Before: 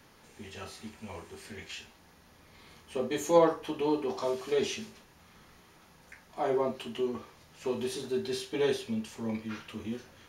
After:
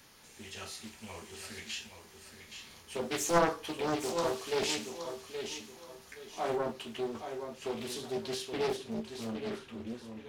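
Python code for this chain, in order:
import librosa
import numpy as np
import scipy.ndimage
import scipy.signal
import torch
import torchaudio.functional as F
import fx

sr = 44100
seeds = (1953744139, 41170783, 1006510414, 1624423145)

y = fx.high_shelf(x, sr, hz=2600.0, db=fx.steps((0.0, 11.5), (6.55, 5.5), (8.67, -6.0)))
y = fx.echo_feedback(y, sr, ms=823, feedback_pct=30, wet_db=-8)
y = fx.doppler_dist(y, sr, depth_ms=0.64)
y = F.gain(torch.from_numpy(y), -4.0).numpy()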